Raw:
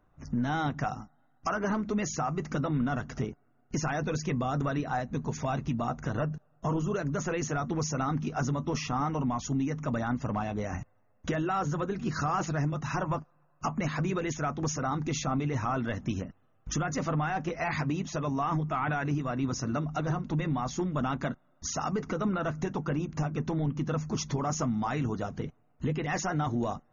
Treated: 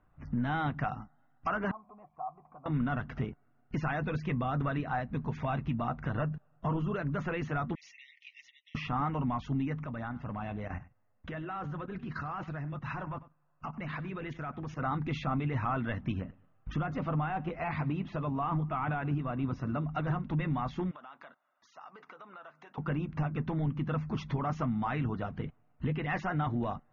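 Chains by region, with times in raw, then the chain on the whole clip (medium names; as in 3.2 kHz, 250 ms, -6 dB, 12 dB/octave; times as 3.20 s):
1.71–2.66 s: jump at every zero crossing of -43 dBFS + cascade formant filter a
7.75–8.75 s: brick-wall FIR high-pass 1.8 kHz + modulation noise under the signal 31 dB
9.84–14.79 s: level held to a coarse grid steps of 12 dB + delay 95 ms -18 dB
16.12–19.85 s: low-pass 3.4 kHz 6 dB/octave + dynamic bell 1.8 kHz, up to -6 dB, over -49 dBFS, Q 1.9 + feedback delay 108 ms, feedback 36%, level -23 dB
20.91–22.78 s: high-pass 830 Hz + dynamic bell 2.1 kHz, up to -7 dB, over -51 dBFS, Q 0.88 + compression 4:1, threshold -45 dBFS
whole clip: low-pass 3.2 kHz 24 dB/octave; peaking EQ 410 Hz -5 dB 1.6 oct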